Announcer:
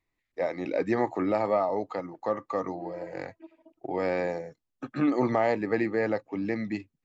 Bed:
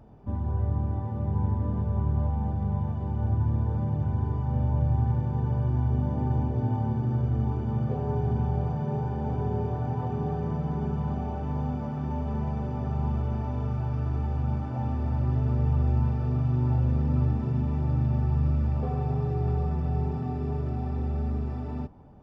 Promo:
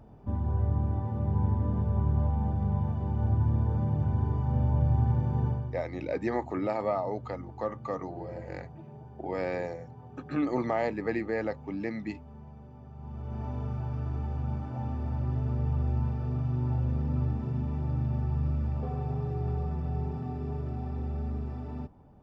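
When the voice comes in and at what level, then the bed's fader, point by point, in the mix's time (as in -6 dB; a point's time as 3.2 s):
5.35 s, -4.0 dB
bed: 5.47 s -0.5 dB
5.84 s -18 dB
12.94 s -18 dB
13.44 s -4.5 dB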